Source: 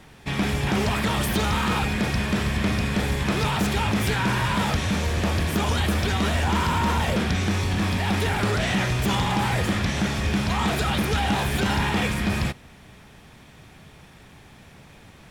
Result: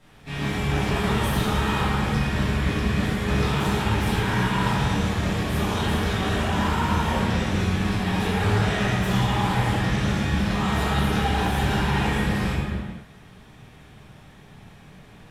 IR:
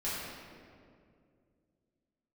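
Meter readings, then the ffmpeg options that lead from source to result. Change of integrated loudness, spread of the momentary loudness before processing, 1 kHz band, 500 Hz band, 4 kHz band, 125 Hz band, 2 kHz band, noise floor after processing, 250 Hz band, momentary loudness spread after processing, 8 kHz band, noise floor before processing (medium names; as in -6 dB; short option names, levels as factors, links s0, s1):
0.0 dB, 2 LU, 0.0 dB, +0.5 dB, -2.0 dB, +1.0 dB, -1.0 dB, -48 dBFS, +0.5 dB, 2 LU, -4.0 dB, -49 dBFS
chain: -filter_complex "[1:a]atrim=start_sample=2205,afade=t=out:st=0.42:d=0.01,atrim=end_sample=18963,asetrate=30870,aresample=44100[s0];[0:a][s0]afir=irnorm=-1:irlink=0,volume=0.376"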